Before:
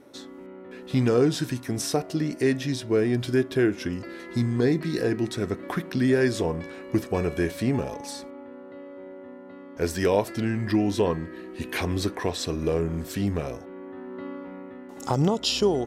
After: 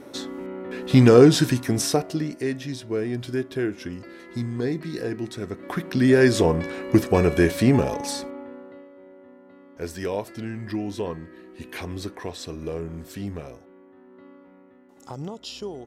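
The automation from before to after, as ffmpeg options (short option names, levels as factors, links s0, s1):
-af "volume=9.44,afade=t=out:st=1.36:d=1.02:silence=0.237137,afade=t=in:st=5.54:d=0.86:silence=0.281838,afade=t=out:st=8.12:d=0.78:silence=0.223872,afade=t=out:st=13.31:d=0.59:silence=0.501187"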